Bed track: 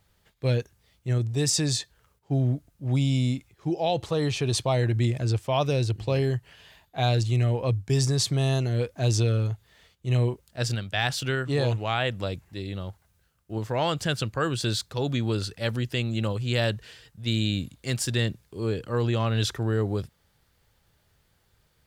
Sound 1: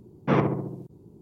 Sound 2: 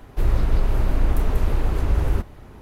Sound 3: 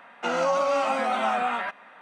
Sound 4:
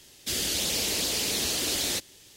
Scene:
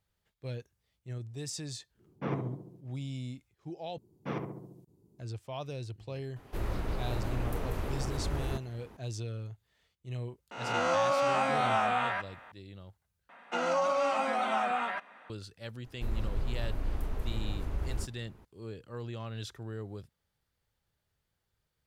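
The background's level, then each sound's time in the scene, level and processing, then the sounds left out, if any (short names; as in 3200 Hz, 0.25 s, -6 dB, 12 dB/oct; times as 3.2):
bed track -15 dB
1.94 add 1 -13 dB, fades 0.10 s
3.98 replace with 1 -14.5 dB + high shelf 4000 Hz +10.5 dB
6.36 add 2 -7 dB + low shelf 83 Hz -11.5 dB
10.51 add 3 -5 dB + spectral swells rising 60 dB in 0.90 s
13.29 replace with 3 -5 dB
15.84 add 2 -14 dB
not used: 4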